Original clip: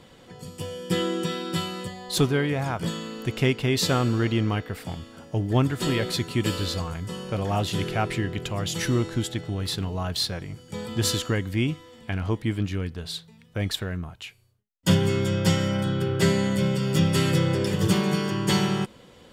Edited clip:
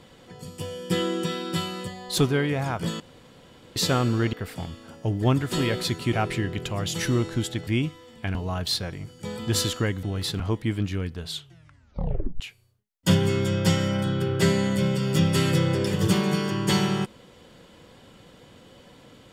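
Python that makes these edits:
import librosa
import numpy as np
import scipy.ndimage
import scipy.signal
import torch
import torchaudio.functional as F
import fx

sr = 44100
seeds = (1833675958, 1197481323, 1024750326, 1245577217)

y = fx.edit(x, sr, fx.room_tone_fill(start_s=3.0, length_s=0.76),
    fx.cut(start_s=4.33, length_s=0.29),
    fx.cut(start_s=6.42, length_s=1.51),
    fx.swap(start_s=9.47, length_s=0.37, other_s=11.52, other_length_s=0.68),
    fx.tape_stop(start_s=13.08, length_s=1.12), tone=tone)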